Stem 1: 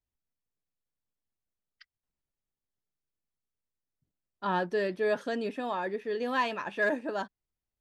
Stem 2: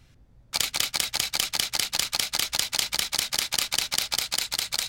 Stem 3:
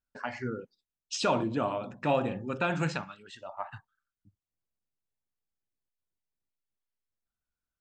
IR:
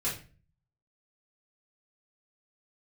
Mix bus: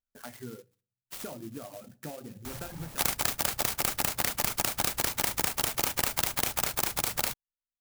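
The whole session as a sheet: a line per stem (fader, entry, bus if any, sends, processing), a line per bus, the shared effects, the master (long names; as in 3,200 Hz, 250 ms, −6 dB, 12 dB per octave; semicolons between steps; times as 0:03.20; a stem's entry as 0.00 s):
muted
+3.0 dB, 2.45 s, no send, compressor on every frequency bin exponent 0.4; high-shelf EQ 2,100 Hz −11.5 dB
−5.5 dB, 0.00 s, send −16 dB, parametric band 1,000 Hz −12 dB 0.39 octaves; downward compressor 12 to 1, threshold −31 dBFS, peak gain reduction 9.5 dB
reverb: on, RT60 0.40 s, pre-delay 3 ms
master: reverb reduction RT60 1.1 s; converter with an unsteady clock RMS 0.097 ms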